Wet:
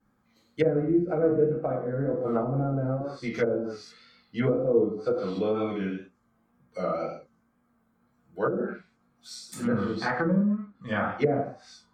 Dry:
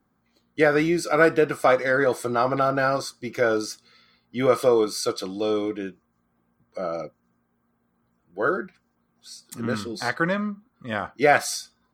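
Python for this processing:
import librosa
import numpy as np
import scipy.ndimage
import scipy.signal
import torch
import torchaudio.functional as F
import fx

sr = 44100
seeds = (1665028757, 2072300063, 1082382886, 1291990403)

y = fx.rev_gated(x, sr, seeds[0], gate_ms=210, shape='falling', drr_db=-5.5)
y = fx.vibrato(y, sr, rate_hz=2.0, depth_cents=59.0)
y = fx.env_lowpass_down(y, sr, base_hz=360.0, full_db=-13.0)
y = y * librosa.db_to_amplitude(-5.0)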